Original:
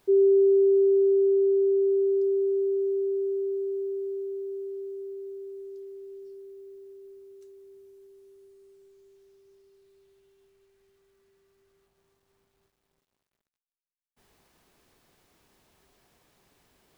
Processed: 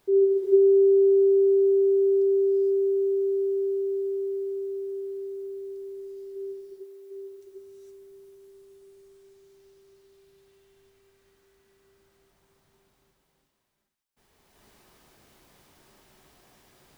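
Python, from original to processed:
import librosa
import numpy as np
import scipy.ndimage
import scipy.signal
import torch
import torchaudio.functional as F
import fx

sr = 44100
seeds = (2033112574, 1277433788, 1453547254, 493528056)

y = fx.highpass(x, sr, hz=370.0, slope=24, at=(6.35, 7.1), fade=0.02)
y = fx.rev_gated(y, sr, seeds[0], gate_ms=490, shape='rising', drr_db=-7.5)
y = y * librosa.db_to_amplitude(-1.5)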